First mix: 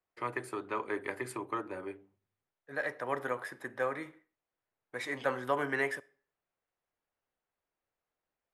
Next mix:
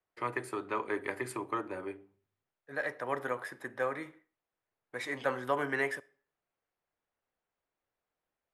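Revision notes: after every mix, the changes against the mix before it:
first voice: send on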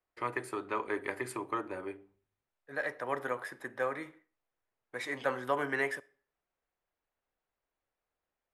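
first voice: remove high-pass 87 Hz 24 dB/octave; master: add bass shelf 170 Hz -3 dB

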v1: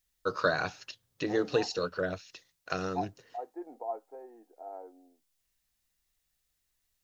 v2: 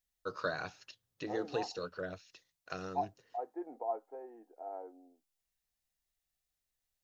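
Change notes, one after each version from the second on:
first voice -8.5 dB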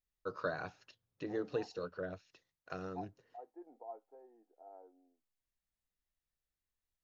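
second voice -10.5 dB; master: add treble shelf 2.4 kHz -11.5 dB

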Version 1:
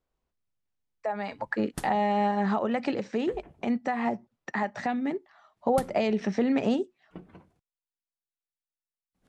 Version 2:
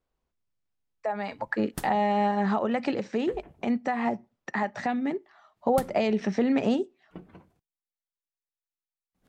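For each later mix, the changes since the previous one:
background: remove steep low-pass 12 kHz; reverb: on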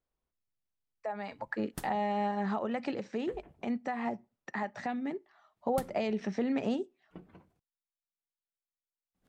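speech -7.0 dB; background -5.5 dB

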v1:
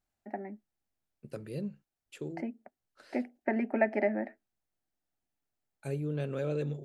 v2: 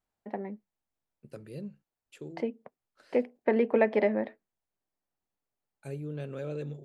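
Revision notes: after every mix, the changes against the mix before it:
first voice: remove static phaser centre 710 Hz, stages 8; second voice -3.5 dB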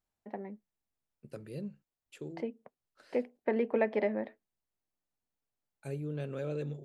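first voice -5.0 dB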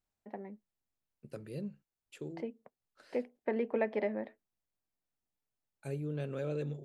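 first voice -3.0 dB

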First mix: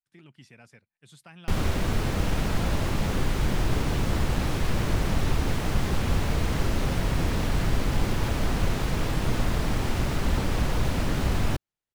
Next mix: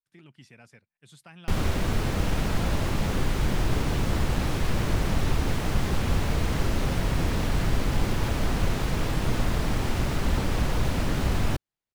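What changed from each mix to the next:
no change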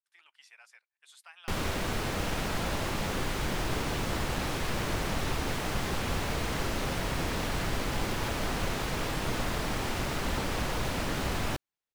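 speech: add high-pass 860 Hz 24 dB/octave; background: add bass shelf 260 Hz -10 dB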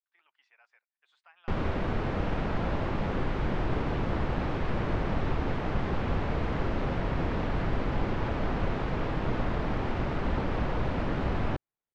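background +4.0 dB; master: add tape spacing loss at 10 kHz 39 dB

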